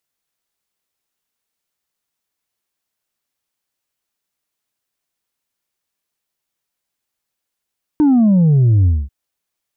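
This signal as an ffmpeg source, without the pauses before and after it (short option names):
-f lavfi -i "aevalsrc='0.355*clip((1.09-t)/0.23,0,1)*tanh(1.33*sin(2*PI*310*1.09/log(65/310)*(exp(log(65/310)*t/1.09)-1)))/tanh(1.33)':d=1.09:s=44100"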